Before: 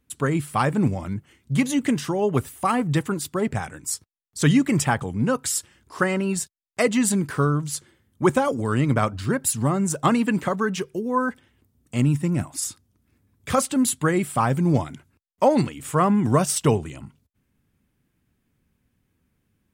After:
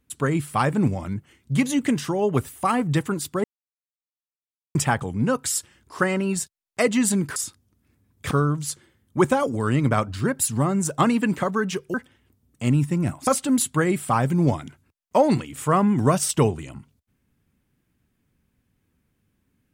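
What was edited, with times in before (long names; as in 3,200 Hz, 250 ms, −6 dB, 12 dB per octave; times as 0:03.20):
0:03.44–0:04.75: silence
0:10.99–0:11.26: remove
0:12.59–0:13.54: move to 0:07.36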